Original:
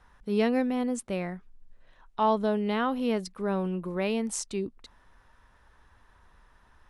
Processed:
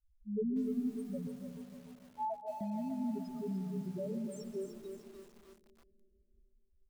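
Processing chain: gate with hold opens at -50 dBFS; loudest bins only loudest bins 1; 1.27–2.61 s: rippled Chebyshev high-pass 500 Hz, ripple 3 dB; frequency-shifting echo 128 ms, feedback 30%, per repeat -32 Hz, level -16 dB; algorithmic reverb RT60 2.9 s, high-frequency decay 0.55×, pre-delay 115 ms, DRR 11 dB; bit-crushed delay 298 ms, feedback 55%, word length 9-bit, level -7 dB; trim -2.5 dB

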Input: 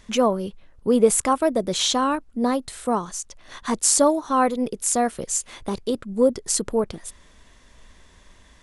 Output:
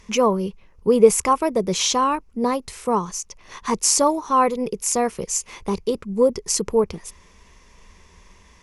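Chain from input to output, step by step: rippled EQ curve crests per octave 0.8, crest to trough 8 dB; trim +1 dB

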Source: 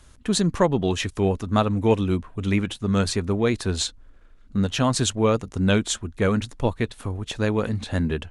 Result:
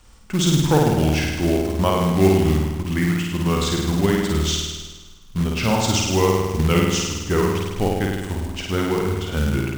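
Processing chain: flutter echo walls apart 7.6 m, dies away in 1.1 s; tape speed -15%; short-mantissa float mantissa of 2-bit

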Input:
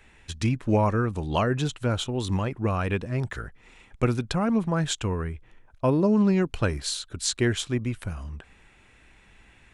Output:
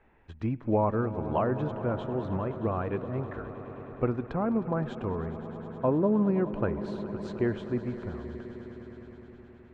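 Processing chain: low-pass 1 kHz 12 dB/octave; bass shelf 220 Hz -9.5 dB; echo with a slow build-up 104 ms, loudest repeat 5, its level -17.5 dB

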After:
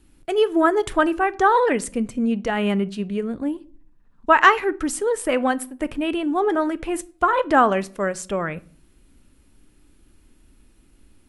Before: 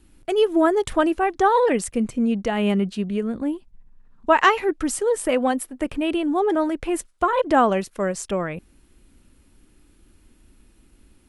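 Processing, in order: dynamic bell 1.5 kHz, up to +6 dB, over -35 dBFS, Q 1.3; simulated room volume 430 m³, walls furnished, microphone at 0.32 m; trim -1 dB

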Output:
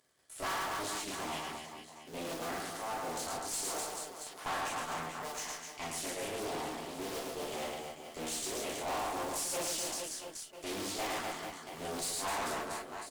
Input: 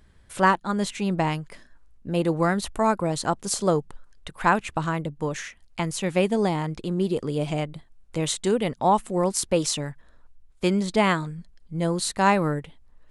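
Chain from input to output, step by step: cycle switcher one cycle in 2, muted; high-pass 94 Hz 24 dB/octave; tone controls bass -15 dB, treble +10 dB; level held to a coarse grid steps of 11 dB; reverse bouncing-ball echo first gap 110 ms, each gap 1.3×, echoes 5; gated-style reverb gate 80 ms flat, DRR -3.5 dB; valve stage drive 27 dB, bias 0.5; loudspeaker Doppler distortion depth 0.32 ms; trim -6 dB

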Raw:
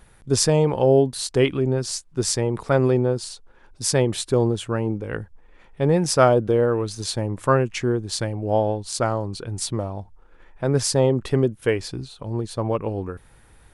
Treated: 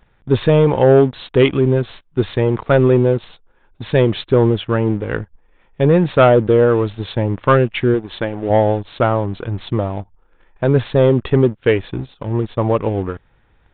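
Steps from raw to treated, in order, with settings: 7.94–8.50 s: peaking EQ 110 Hz -10 dB 1 oct; waveshaping leveller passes 2; resampled via 8 kHz

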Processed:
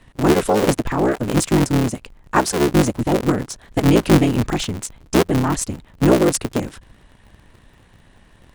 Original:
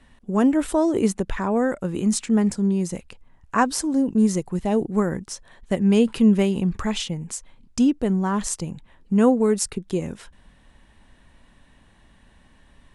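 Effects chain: cycle switcher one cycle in 3, inverted; granular stretch 0.66×, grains 32 ms; trim +5 dB

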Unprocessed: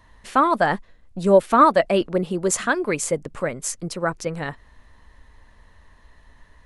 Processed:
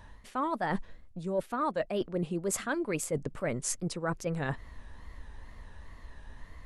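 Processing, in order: bass shelf 440 Hz +4.5 dB; reverse; compression 8:1, threshold -29 dBFS, peak gain reduction 21 dB; reverse; wow and flutter 97 cents

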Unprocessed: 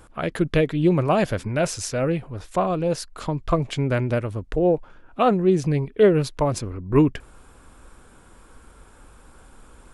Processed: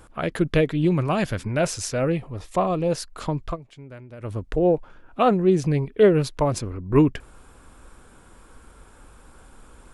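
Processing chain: 0.84–1.55 s: dynamic bell 570 Hz, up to -6 dB, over -31 dBFS, Q 0.91; 2.12–2.89 s: Butterworth band-stop 1.5 kHz, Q 6.8; 3.44–4.31 s: dip -19 dB, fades 0.13 s

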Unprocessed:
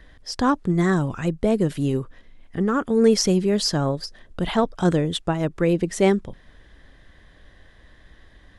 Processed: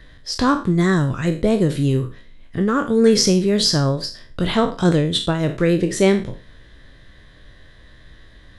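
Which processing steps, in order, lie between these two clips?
spectral sustain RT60 0.36 s; graphic EQ with 31 bands 125 Hz +7 dB, 800 Hz -6 dB, 4 kHz +6 dB; trim +2.5 dB

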